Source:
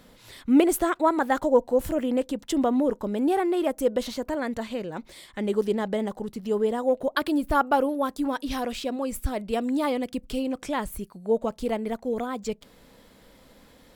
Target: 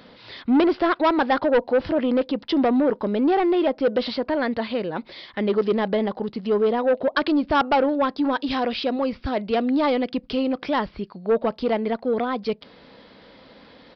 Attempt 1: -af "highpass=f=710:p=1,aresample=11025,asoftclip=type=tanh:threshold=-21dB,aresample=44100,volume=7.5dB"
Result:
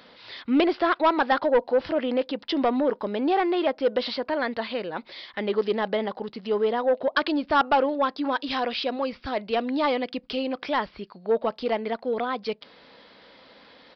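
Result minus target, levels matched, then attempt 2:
250 Hz band -2.5 dB
-af "highpass=f=190:p=1,aresample=11025,asoftclip=type=tanh:threshold=-21dB,aresample=44100,volume=7.5dB"

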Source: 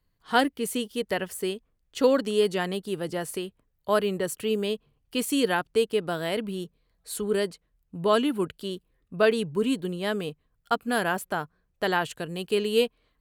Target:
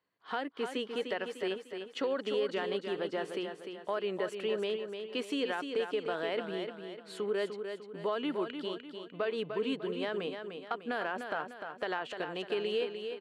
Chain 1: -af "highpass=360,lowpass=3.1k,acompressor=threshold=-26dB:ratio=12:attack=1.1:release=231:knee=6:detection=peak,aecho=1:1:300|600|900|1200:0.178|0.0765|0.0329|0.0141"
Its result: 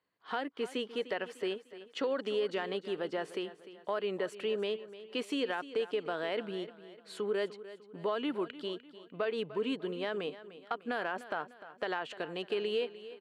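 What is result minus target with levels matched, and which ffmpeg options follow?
echo-to-direct -8 dB
-af "highpass=360,lowpass=3.1k,acompressor=threshold=-26dB:ratio=12:attack=1.1:release=231:knee=6:detection=peak,aecho=1:1:300|600|900|1200|1500:0.447|0.192|0.0826|0.0355|0.0153"

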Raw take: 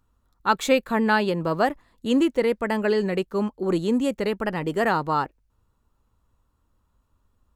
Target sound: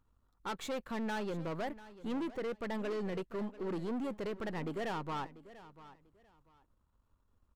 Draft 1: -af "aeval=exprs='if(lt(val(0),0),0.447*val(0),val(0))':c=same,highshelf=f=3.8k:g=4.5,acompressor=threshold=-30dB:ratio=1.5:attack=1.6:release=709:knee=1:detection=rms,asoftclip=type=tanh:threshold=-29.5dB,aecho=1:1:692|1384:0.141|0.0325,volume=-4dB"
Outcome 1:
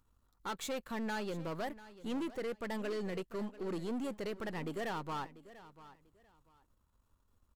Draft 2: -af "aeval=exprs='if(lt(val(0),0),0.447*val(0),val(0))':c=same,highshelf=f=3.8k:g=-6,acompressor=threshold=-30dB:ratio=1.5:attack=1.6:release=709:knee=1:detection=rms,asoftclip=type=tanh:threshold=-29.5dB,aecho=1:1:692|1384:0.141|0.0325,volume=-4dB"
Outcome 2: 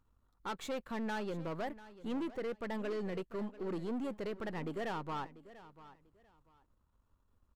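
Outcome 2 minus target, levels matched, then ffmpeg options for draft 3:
compressor: peak gain reduction +2.5 dB
-af "aeval=exprs='if(lt(val(0),0),0.447*val(0),val(0))':c=same,highshelf=f=3.8k:g=-6,acompressor=threshold=-22.5dB:ratio=1.5:attack=1.6:release=709:knee=1:detection=rms,asoftclip=type=tanh:threshold=-29.5dB,aecho=1:1:692|1384:0.141|0.0325,volume=-4dB"

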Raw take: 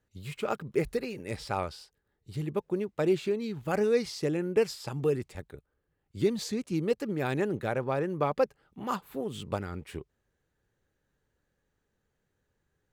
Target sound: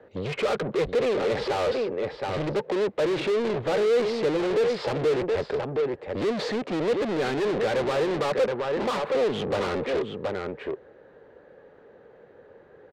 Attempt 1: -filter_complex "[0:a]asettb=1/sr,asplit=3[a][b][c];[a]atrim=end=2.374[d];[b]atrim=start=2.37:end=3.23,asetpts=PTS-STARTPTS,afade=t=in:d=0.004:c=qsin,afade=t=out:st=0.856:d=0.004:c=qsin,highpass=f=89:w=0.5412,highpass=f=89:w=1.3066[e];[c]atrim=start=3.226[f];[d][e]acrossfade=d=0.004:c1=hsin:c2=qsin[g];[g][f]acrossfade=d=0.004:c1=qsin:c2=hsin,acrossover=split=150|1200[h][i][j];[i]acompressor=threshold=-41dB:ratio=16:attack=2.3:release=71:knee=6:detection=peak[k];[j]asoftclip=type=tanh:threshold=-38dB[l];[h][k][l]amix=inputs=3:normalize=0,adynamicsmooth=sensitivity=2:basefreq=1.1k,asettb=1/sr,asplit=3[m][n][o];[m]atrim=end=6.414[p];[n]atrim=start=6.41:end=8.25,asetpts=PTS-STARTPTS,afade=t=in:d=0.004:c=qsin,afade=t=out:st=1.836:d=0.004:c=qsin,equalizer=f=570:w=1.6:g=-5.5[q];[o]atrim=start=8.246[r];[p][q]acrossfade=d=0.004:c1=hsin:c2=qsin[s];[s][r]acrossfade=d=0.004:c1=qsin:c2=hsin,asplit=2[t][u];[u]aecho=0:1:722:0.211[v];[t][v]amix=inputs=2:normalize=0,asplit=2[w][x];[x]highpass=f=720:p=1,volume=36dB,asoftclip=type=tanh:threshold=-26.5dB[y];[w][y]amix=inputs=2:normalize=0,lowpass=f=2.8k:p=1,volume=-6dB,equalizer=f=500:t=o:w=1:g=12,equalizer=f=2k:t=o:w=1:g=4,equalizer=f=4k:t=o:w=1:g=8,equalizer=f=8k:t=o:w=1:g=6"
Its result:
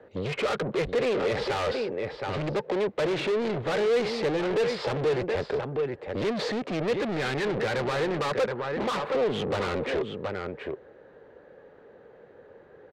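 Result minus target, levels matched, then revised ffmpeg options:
compressor: peak gain reduction +9.5 dB
-filter_complex "[0:a]asettb=1/sr,asplit=3[a][b][c];[a]atrim=end=2.374[d];[b]atrim=start=2.37:end=3.23,asetpts=PTS-STARTPTS,afade=t=in:d=0.004:c=qsin,afade=t=out:st=0.856:d=0.004:c=qsin,highpass=f=89:w=0.5412,highpass=f=89:w=1.3066[e];[c]atrim=start=3.226[f];[d][e]acrossfade=d=0.004:c1=hsin:c2=qsin[g];[g][f]acrossfade=d=0.004:c1=qsin:c2=hsin,acrossover=split=150|1200[h][i][j];[i]acompressor=threshold=-31dB:ratio=16:attack=2.3:release=71:knee=6:detection=peak[k];[j]asoftclip=type=tanh:threshold=-38dB[l];[h][k][l]amix=inputs=3:normalize=0,adynamicsmooth=sensitivity=2:basefreq=1.1k,asettb=1/sr,asplit=3[m][n][o];[m]atrim=end=6.414[p];[n]atrim=start=6.41:end=8.25,asetpts=PTS-STARTPTS,afade=t=in:d=0.004:c=qsin,afade=t=out:st=1.836:d=0.004:c=qsin,equalizer=f=570:w=1.6:g=-5.5[q];[o]atrim=start=8.246[r];[p][q]acrossfade=d=0.004:c1=hsin:c2=qsin[s];[s][r]acrossfade=d=0.004:c1=qsin:c2=hsin,asplit=2[t][u];[u]aecho=0:1:722:0.211[v];[t][v]amix=inputs=2:normalize=0,asplit=2[w][x];[x]highpass=f=720:p=1,volume=36dB,asoftclip=type=tanh:threshold=-26.5dB[y];[w][y]amix=inputs=2:normalize=0,lowpass=f=2.8k:p=1,volume=-6dB,equalizer=f=500:t=o:w=1:g=12,equalizer=f=2k:t=o:w=1:g=4,equalizer=f=4k:t=o:w=1:g=8,equalizer=f=8k:t=o:w=1:g=6"

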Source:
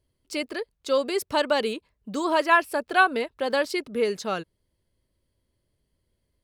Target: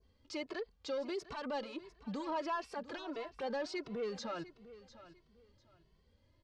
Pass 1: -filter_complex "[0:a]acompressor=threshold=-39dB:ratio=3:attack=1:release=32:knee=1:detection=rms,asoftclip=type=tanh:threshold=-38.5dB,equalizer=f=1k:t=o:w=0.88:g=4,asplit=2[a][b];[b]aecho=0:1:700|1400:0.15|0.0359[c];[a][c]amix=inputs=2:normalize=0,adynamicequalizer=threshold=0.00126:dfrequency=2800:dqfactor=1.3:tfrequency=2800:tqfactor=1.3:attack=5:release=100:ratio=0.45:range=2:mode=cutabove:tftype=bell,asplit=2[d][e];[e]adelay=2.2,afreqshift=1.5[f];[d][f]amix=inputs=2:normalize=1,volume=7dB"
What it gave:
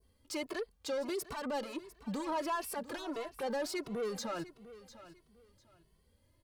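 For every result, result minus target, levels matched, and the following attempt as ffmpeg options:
8000 Hz band +8.5 dB; compressor: peak gain reduction -4.5 dB
-filter_complex "[0:a]acompressor=threshold=-39dB:ratio=3:attack=1:release=32:knee=1:detection=rms,asoftclip=type=tanh:threshold=-38.5dB,lowpass=f=5.9k:w=0.5412,lowpass=f=5.9k:w=1.3066,equalizer=f=1k:t=o:w=0.88:g=4,asplit=2[a][b];[b]aecho=0:1:700|1400:0.15|0.0359[c];[a][c]amix=inputs=2:normalize=0,adynamicequalizer=threshold=0.00126:dfrequency=2800:dqfactor=1.3:tfrequency=2800:tqfactor=1.3:attack=5:release=100:ratio=0.45:range=2:mode=cutabove:tftype=bell,asplit=2[d][e];[e]adelay=2.2,afreqshift=1.5[f];[d][f]amix=inputs=2:normalize=1,volume=7dB"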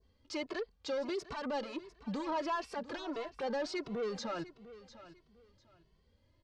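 compressor: peak gain reduction -4.5 dB
-filter_complex "[0:a]acompressor=threshold=-46dB:ratio=3:attack=1:release=32:knee=1:detection=rms,asoftclip=type=tanh:threshold=-38.5dB,lowpass=f=5.9k:w=0.5412,lowpass=f=5.9k:w=1.3066,equalizer=f=1k:t=o:w=0.88:g=4,asplit=2[a][b];[b]aecho=0:1:700|1400:0.15|0.0359[c];[a][c]amix=inputs=2:normalize=0,adynamicequalizer=threshold=0.00126:dfrequency=2800:dqfactor=1.3:tfrequency=2800:tqfactor=1.3:attack=5:release=100:ratio=0.45:range=2:mode=cutabove:tftype=bell,asplit=2[d][e];[e]adelay=2.2,afreqshift=1.5[f];[d][f]amix=inputs=2:normalize=1,volume=7dB"

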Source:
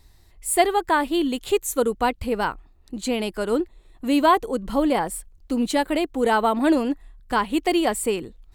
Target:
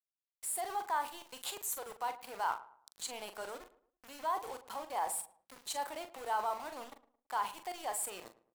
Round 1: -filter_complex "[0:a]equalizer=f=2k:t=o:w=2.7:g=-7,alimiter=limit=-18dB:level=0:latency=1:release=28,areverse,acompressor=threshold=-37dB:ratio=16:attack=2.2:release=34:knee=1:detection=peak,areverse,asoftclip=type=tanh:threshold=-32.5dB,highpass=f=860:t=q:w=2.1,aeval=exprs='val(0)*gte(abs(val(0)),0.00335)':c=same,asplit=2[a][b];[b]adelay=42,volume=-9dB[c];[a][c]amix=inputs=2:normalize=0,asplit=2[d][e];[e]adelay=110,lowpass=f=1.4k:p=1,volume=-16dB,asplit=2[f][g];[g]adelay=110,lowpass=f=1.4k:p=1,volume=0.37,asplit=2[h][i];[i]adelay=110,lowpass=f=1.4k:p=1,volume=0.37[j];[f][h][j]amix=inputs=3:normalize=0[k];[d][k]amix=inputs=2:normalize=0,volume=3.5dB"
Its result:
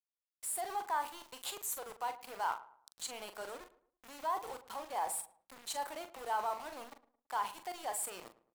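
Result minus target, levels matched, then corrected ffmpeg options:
soft clip: distortion +11 dB
-filter_complex "[0:a]equalizer=f=2k:t=o:w=2.7:g=-7,alimiter=limit=-18dB:level=0:latency=1:release=28,areverse,acompressor=threshold=-37dB:ratio=16:attack=2.2:release=34:knee=1:detection=peak,areverse,asoftclip=type=tanh:threshold=-26.5dB,highpass=f=860:t=q:w=2.1,aeval=exprs='val(0)*gte(abs(val(0)),0.00335)':c=same,asplit=2[a][b];[b]adelay=42,volume=-9dB[c];[a][c]amix=inputs=2:normalize=0,asplit=2[d][e];[e]adelay=110,lowpass=f=1.4k:p=1,volume=-16dB,asplit=2[f][g];[g]adelay=110,lowpass=f=1.4k:p=1,volume=0.37,asplit=2[h][i];[i]adelay=110,lowpass=f=1.4k:p=1,volume=0.37[j];[f][h][j]amix=inputs=3:normalize=0[k];[d][k]amix=inputs=2:normalize=0,volume=3.5dB"

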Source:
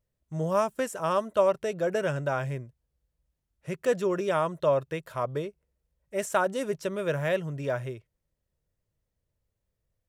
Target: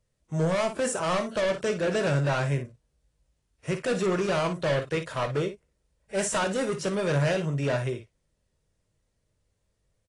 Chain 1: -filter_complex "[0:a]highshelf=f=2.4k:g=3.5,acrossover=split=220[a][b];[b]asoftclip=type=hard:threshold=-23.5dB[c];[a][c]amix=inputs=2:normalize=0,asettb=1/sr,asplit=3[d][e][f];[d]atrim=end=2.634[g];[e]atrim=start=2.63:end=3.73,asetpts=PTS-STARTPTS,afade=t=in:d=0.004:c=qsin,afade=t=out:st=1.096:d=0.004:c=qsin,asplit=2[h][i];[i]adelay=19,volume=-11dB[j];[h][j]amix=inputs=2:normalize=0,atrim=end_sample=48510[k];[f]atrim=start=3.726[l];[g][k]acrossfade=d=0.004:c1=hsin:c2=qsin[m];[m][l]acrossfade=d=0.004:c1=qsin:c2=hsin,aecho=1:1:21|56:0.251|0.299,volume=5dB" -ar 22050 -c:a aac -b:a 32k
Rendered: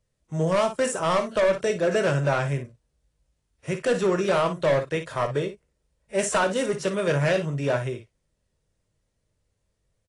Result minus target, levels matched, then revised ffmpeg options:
hard clip: distortion -5 dB
-filter_complex "[0:a]highshelf=f=2.4k:g=3.5,acrossover=split=220[a][b];[b]asoftclip=type=hard:threshold=-30dB[c];[a][c]amix=inputs=2:normalize=0,asettb=1/sr,asplit=3[d][e][f];[d]atrim=end=2.634[g];[e]atrim=start=2.63:end=3.73,asetpts=PTS-STARTPTS,afade=t=in:d=0.004:c=qsin,afade=t=out:st=1.096:d=0.004:c=qsin,asplit=2[h][i];[i]adelay=19,volume=-11dB[j];[h][j]amix=inputs=2:normalize=0,atrim=end_sample=48510[k];[f]atrim=start=3.726[l];[g][k]acrossfade=d=0.004:c1=hsin:c2=qsin[m];[m][l]acrossfade=d=0.004:c1=qsin:c2=hsin,aecho=1:1:21|56:0.251|0.299,volume=5dB" -ar 22050 -c:a aac -b:a 32k

